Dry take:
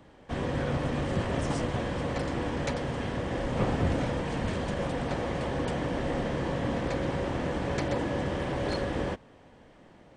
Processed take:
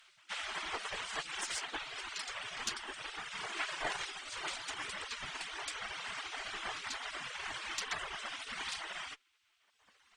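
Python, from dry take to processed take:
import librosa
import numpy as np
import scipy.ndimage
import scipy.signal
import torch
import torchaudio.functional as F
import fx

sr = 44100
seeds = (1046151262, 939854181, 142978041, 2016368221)

y = fx.dereverb_blind(x, sr, rt60_s=1.8)
y = fx.spec_gate(y, sr, threshold_db=-20, keep='weak')
y = fx.cheby_harmonics(y, sr, harmonics=(4,), levels_db=(-17,), full_scale_db=-16.0)
y = F.gain(torch.from_numpy(y), 7.0).numpy()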